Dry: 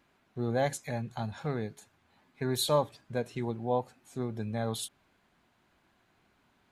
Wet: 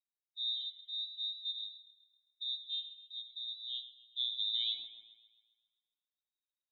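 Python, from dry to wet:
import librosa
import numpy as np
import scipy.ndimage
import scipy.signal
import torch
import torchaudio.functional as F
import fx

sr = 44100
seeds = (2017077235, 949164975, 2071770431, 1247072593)

p1 = fx.bin_expand(x, sr, power=2.0)
p2 = fx.dynamic_eq(p1, sr, hz=1800.0, q=1.8, threshold_db=-51.0, ratio=4.0, max_db=3)
p3 = fx.filter_sweep_lowpass(p2, sr, from_hz=110.0, to_hz=730.0, start_s=3.49, end_s=4.53, q=0.91)
p4 = fx.freq_invert(p3, sr, carrier_hz=3800)
p5 = p4 + fx.echo_wet_bandpass(p4, sr, ms=133, feedback_pct=52, hz=1400.0, wet_db=-9.0, dry=0)
p6 = fx.rev_freeverb(p5, sr, rt60_s=0.77, hf_ratio=0.4, predelay_ms=50, drr_db=9.0)
y = F.gain(torch.from_numpy(p6), 2.0).numpy()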